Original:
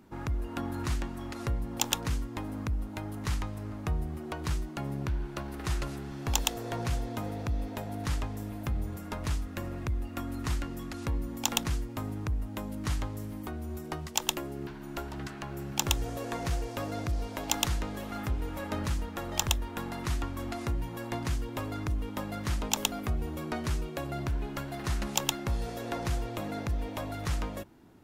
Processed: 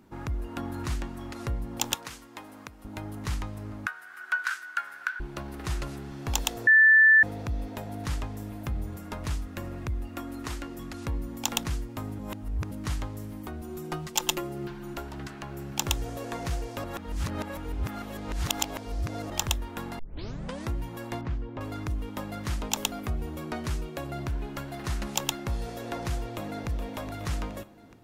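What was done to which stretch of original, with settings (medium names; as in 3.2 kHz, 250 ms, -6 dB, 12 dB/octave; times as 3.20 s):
1.94–2.85 s: high-pass 850 Hz 6 dB/octave
3.86–5.20 s: resonant high-pass 1.5 kHz, resonance Q 15
6.67–7.23 s: bleep 1.76 kHz -13.5 dBFS
10.17–10.79 s: resonant low shelf 230 Hz -6 dB, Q 1.5
12.19–12.71 s: reverse
13.61–14.94 s: comb 5.7 ms, depth 88%
16.84–19.30 s: reverse
19.99 s: tape start 0.71 s
21.21–21.61 s: tape spacing loss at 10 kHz 34 dB
26.22–26.67 s: echo throw 420 ms, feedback 60%, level -10 dB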